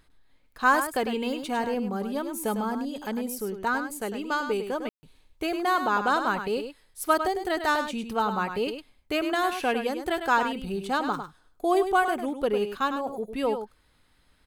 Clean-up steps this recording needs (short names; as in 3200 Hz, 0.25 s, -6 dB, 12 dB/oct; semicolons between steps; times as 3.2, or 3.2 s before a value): room tone fill 4.89–5.03; inverse comb 0.102 s -8.5 dB